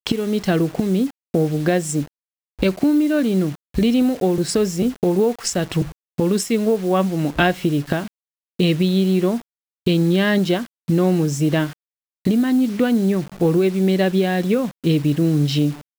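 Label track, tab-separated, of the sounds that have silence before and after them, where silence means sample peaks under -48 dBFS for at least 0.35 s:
2.590000	8.080000	sound
8.590000	9.420000	sound
9.860000	11.730000	sound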